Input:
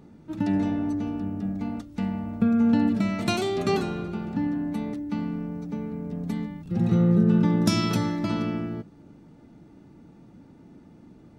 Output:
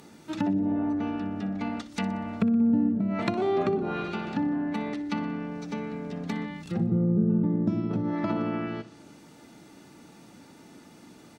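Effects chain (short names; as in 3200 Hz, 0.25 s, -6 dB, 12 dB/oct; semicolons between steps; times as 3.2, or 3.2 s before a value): treble ducked by the level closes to 340 Hz, closed at -20 dBFS; tilt +4 dB/oct; feedback echo 61 ms, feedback 51%, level -16 dB; gain +6.5 dB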